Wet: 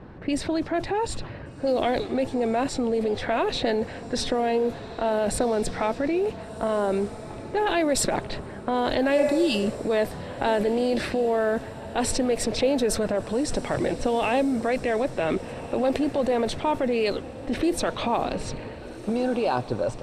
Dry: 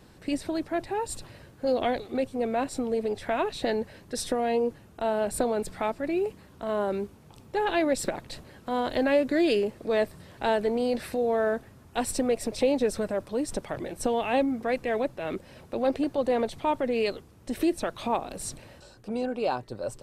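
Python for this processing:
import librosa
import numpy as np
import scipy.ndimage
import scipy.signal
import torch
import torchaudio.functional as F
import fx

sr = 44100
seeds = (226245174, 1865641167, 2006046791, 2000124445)

p1 = fx.spec_repair(x, sr, seeds[0], start_s=9.2, length_s=0.58, low_hz=400.0, high_hz=2600.0, source='both')
p2 = fx.env_lowpass(p1, sr, base_hz=1500.0, full_db=-21.5)
p3 = fx.over_compress(p2, sr, threshold_db=-34.0, ratio=-1.0)
p4 = p2 + F.gain(torch.from_numpy(p3), 1.0).numpy()
y = fx.echo_diffused(p4, sr, ms=1481, feedback_pct=46, wet_db=-15)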